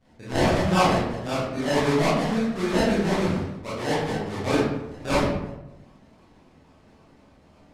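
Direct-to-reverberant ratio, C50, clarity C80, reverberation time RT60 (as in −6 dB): −10.5 dB, −1.0 dB, 3.5 dB, 0.95 s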